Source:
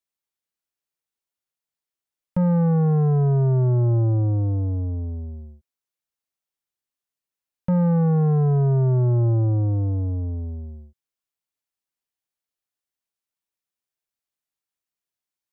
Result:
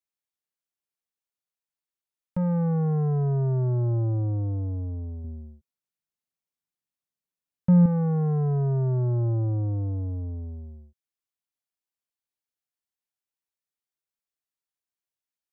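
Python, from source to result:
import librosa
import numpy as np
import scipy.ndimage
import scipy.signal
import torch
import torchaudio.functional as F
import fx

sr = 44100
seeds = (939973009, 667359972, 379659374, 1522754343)

y = fx.peak_eq(x, sr, hz=160.0, db=9.0, octaves=1.4, at=(5.24, 7.86))
y = F.gain(torch.from_numpy(y), -5.5).numpy()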